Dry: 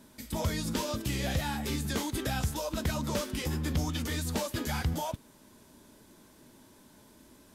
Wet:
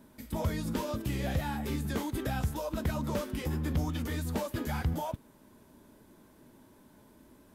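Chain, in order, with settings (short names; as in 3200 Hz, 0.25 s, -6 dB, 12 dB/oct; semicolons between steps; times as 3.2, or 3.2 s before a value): bell 5800 Hz -9.5 dB 2.4 oct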